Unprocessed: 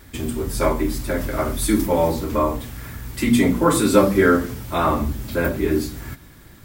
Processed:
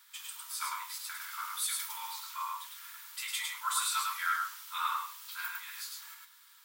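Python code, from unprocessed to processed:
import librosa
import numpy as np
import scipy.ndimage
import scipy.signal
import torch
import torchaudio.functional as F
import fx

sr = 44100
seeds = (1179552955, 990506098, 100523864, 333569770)

p1 = scipy.signal.sosfilt(scipy.signal.cheby1(6, 6, 920.0, 'highpass', fs=sr, output='sos'), x)
p2 = fx.high_shelf(p1, sr, hz=4400.0, db=7.5)
p3 = p2 + fx.echo_single(p2, sr, ms=104, db=-3.0, dry=0)
y = p3 * 10.0 ** (-9.0 / 20.0)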